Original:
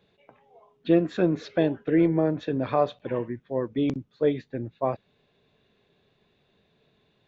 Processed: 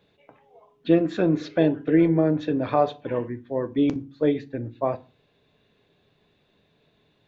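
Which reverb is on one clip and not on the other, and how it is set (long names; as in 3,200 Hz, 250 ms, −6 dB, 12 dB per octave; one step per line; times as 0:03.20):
feedback delay network reverb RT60 0.34 s, low-frequency decay 1.5×, high-frequency decay 0.7×, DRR 11 dB
level +1.5 dB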